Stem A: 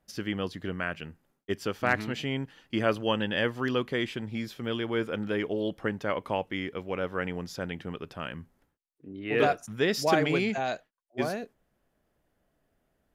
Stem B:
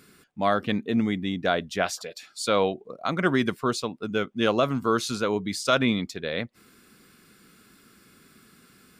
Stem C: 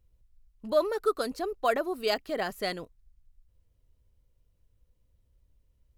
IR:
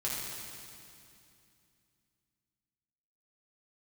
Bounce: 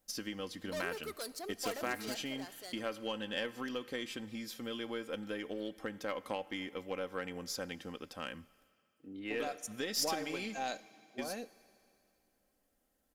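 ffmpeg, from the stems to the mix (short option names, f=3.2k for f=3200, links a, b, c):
-filter_complex "[0:a]aecho=1:1:3.8:0.53,volume=-5dB,asplit=2[a][b];[b]volume=-24dB[c];[2:a]asoftclip=type=tanh:threshold=-29dB,volume=-6.5dB,afade=t=out:st=1.63:d=0.63:silence=0.446684,asplit=2[d][e];[e]volume=-20.5dB[f];[a]lowshelf=f=290:g=9,acompressor=threshold=-31dB:ratio=12,volume=0dB[g];[3:a]atrim=start_sample=2205[h];[c][f]amix=inputs=2:normalize=0[i];[i][h]afir=irnorm=-1:irlink=0[j];[d][g][j]amix=inputs=3:normalize=0,bass=f=250:g=-11,treble=f=4k:g=12,aeval=exprs='0.0708*(cos(1*acos(clip(val(0)/0.0708,-1,1)))-cos(1*PI/2))+0.00631*(cos(3*acos(clip(val(0)/0.0708,-1,1)))-cos(3*PI/2))+0.00178*(cos(4*acos(clip(val(0)/0.0708,-1,1)))-cos(4*PI/2))':c=same"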